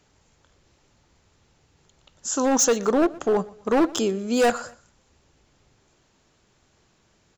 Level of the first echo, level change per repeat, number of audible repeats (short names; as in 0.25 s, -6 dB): -21.5 dB, -9.5 dB, 2